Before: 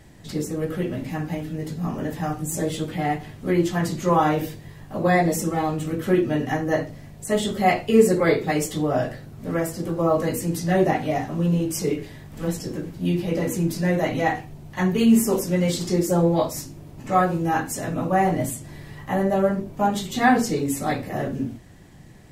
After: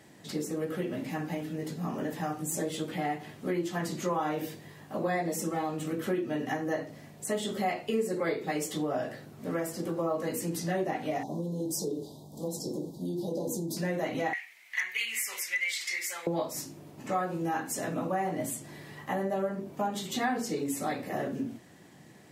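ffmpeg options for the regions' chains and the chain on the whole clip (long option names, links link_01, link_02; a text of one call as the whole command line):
ffmpeg -i in.wav -filter_complex "[0:a]asettb=1/sr,asplit=3[link_01][link_02][link_03];[link_01]atrim=end=11.234[link_04];[link_02]atrim=start=11.23:end=13.77,asetpts=PTS-STARTPTS,afade=type=in:duration=0.004:curve=qsin,afade=type=out:start_time=2.536:duration=0.004:curve=qsin,acompressor=threshold=-23dB:ratio=4:attack=3.2:release=140:knee=1:detection=peak,asuperstop=centerf=1900:order=12:qfactor=0.72,asplit=2[link_05][link_06];[link_06]adelay=14,volume=-13dB[link_07];[link_05][link_07]amix=inputs=2:normalize=0,atrim=end_sample=112014[link_08];[link_03]atrim=start=13.766[link_09];[link_04][link_08]acrossfade=duration=0.004:curve1=hsin:curve2=qsin[link_10];[link_10][link_09]acrossfade=duration=0.004:curve1=qsin:curve2=hsin,asettb=1/sr,asplit=3[link_11][link_12][link_13];[link_11]atrim=end=14.334[link_14];[link_12]atrim=start=14.33:end=16.27,asetpts=PTS-STARTPTS,afade=type=in:duration=0.004:curve=qsin,afade=type=out:start_time=1.936:duration=0.004:curve=qsin,highpass=frequency=2100:width_type=q:width=8.7,volume=14.5dB,asoftclip=hard,volume=-14.5dB[link_15];[link_13]atrim=start=16.266[link_16];[link_14][link_15]acrossfade=duration=0.004:curve1=hsin:curve2=qsin[link_17];[link_17][link_16]acrossfade=duration=0.004:curve1=qsin:curve2=hsin,highpass=200,acompressor=threshold=-27dB:ratio=3,volume=-2.5dB" out.wav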